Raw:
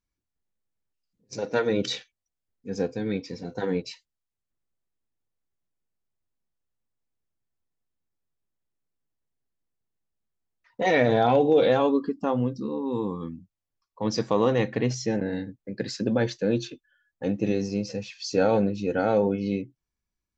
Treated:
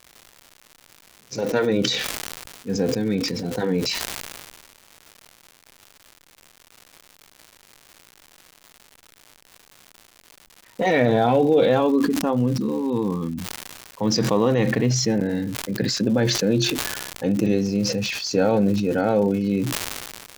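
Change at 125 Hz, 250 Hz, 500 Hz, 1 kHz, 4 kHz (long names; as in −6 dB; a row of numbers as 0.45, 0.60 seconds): +6.5, +5.5, +2.5, +2.0, +10.0 decibels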